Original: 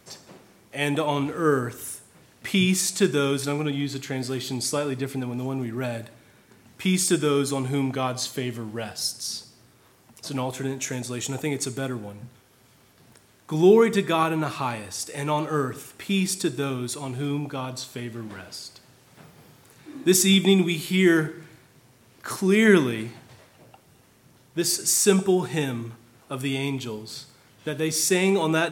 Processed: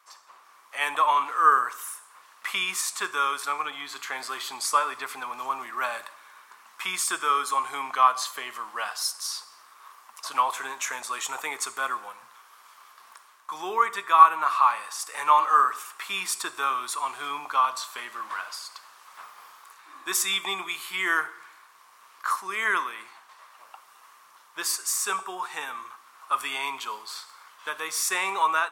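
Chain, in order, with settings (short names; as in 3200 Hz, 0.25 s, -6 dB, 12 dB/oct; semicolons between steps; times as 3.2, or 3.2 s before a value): dynamic EQ 5100 Hz, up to -4 dB, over -40 dBFS, Q 0.72; AGC gain up to 11 dB; resonant high-pass 1100 Hz, resonance Q 6.6; gain -8.5 dB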